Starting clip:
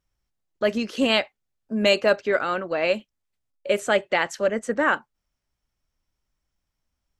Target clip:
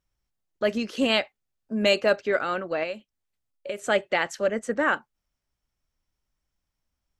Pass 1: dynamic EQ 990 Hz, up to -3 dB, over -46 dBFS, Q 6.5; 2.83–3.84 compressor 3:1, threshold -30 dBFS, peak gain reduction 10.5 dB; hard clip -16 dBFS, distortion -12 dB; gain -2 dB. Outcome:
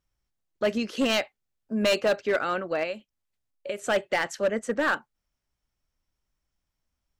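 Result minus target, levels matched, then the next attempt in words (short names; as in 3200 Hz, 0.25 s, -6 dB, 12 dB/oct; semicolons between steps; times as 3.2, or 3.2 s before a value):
hard clip: distortion +40 dB
dynamic EQ 990 Hz, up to -3 dB, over -46 dBFS, Q 6.5; 2.83–3.84 compressor 3:1, threshold -30 dBFS, peak gain reduction 10.5 dB; hard clip -7 dBFS, distortion -52 dB; gain -2 dB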